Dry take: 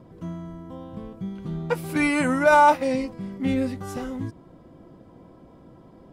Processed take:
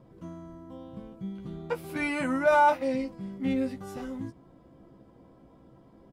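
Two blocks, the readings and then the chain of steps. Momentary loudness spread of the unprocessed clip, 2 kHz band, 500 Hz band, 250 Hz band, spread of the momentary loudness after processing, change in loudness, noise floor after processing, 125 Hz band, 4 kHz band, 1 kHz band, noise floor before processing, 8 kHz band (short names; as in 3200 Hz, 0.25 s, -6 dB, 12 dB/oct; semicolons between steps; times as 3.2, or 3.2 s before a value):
21 LU, -6.5 dB, -4.5 dB, -5.5 dB, 22 LU, -5.5 dB, -57 dBFS, -9.0 dB, -7.0 dB, -6.0 dB, -51 dBFS, -10.0 dB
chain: dynamic EQ 8300 Hz, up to -5 dB, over -47 dBFS, Q 0.83; doubler 15 ms -6.5 dB; gain -7 dB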